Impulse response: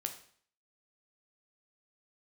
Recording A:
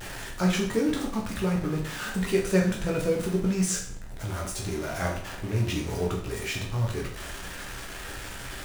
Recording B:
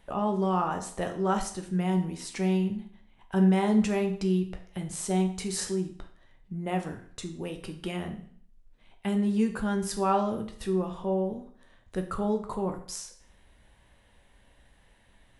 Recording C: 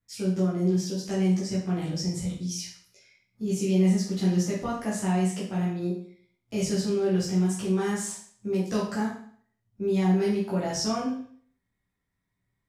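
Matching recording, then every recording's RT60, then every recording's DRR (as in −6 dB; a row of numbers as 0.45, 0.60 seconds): B; 0.55, 0.55, 0.55 seconds; −1.5, 4.5, −8.0 decibels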